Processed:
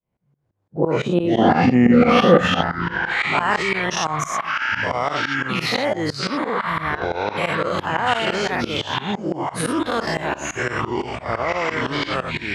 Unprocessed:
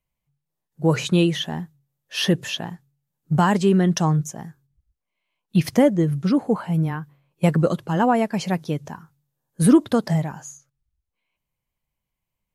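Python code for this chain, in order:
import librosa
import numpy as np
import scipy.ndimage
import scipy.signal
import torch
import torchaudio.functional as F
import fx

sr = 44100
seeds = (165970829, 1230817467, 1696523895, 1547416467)

p1 = fx.spec_dilate(x, sr, span_ms=120)
p2 = fx.echo_pitch(p1, sr, ms=128, semitones=-6, count=3, db_per_echo=-3.0)
p3 = fx.tremolo_shape(p2, sr, shape='saw_up', hz=5.9, depth_pct=95)
p4 = fx.filter_sweep_bandpass(p3, sr, from_hz=320.0, to_hz=1900.0, start_s=0.16, end_s=3.76, q=0.77)
p5 = fx.over_compress(p4, sr, threshold_db=-34.0, ratio=-1.0)
p6 = p4 + F.gain(torch.from_numpy(p5), 2.0).numpy()
p7 = fx.small_body(p6, sr, hz=(220.0, 500.0, 750.0, 1200.0), ring_ms=30, db=13, at=(1.38, 2.61))
y = F.gain(torch.from_numpy(p7), 2.5).numpy()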